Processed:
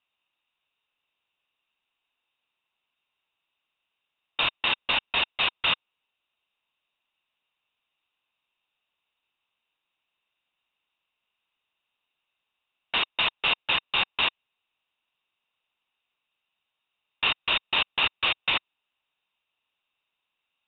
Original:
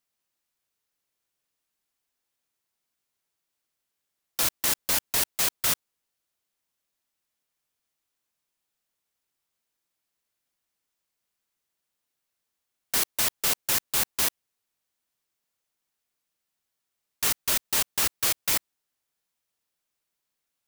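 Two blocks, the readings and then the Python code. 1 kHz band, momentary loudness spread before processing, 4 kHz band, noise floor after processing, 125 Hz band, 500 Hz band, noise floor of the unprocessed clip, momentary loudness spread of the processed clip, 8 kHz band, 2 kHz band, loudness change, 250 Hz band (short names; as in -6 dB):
+5.5 dB, 4 LU, +6.0 dB, -84 dBFS, -3.0 dB, +0.5 dB, -83 dBFS, 4 LU, under -40 dB, +8.0 dB, -0.5 dB, -2.0 dB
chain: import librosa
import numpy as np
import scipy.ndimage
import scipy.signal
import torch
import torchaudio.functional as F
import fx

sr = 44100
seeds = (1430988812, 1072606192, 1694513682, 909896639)

y = scipy.signal.sosfilt(scipy.signal.cheby1(6, 9, 3800.0, 'lowpass', fs=sr, output='sos'), x)
y = fx.peak_eq(y, sr, hz=2900.0, db=9.5, octaves=1.1)
y = y * 10.0 ** (6.0 / 20.0)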